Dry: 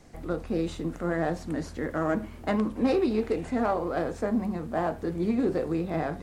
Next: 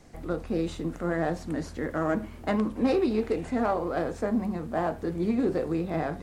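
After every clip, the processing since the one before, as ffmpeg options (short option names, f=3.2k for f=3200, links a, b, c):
-af anull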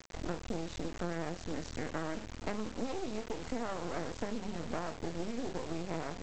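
-af "acompressor=threshold=-33dB:ratio=16,aresample=16000,acrusher=bits=5:dc=4:mix=0:aa=0.000001,aresample=44100,volume=2.5dB"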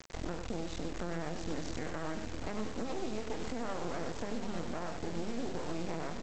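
-filter_complex "[0:a]asplit=2[a][b];[b]aecho=0:1:95|489|847:0.316|0.15|0.299[c];[a][c]amix=inputs=2:normalize=0,alimiter=level_in=2.5dB:limit=-24dB:level=0:latency=1:release=118,volume=-2.5dB,volume=1.5dB"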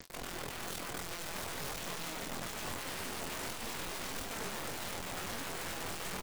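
-filter_complex "[0:a]aeval=exprs='(mod(66.8*val(0)+1,2)-1)/66.8':c=same,flanger=delay=4.2:depth=7.2:regen=-65:speed=0.47:shape=sinusoidal,asplit=2[a][b];[b]adelay=22,volume=-9dB[c];[a][c]amix=inputs=2:normalize=0,volume=5.5dB"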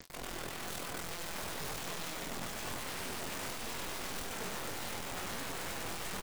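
-af "aecho=1:1:96:0.501,volume=-1dB"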